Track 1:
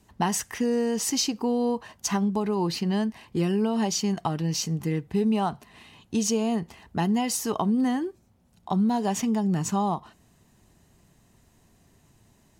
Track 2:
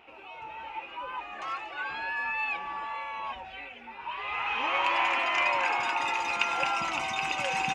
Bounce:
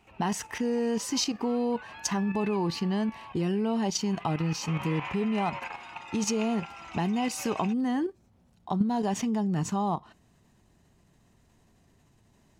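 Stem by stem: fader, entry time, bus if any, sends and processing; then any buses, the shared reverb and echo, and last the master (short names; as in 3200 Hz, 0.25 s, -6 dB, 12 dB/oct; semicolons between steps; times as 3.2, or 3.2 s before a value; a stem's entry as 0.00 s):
+2.5 dB, 0.00 s, no send, high shelf 8600 Hz -10.5 dB
-1.5 dB, 0.00 s, no send, auto duck -7 dB, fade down 1.05 s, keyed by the first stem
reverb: off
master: level quantiser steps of 9 dB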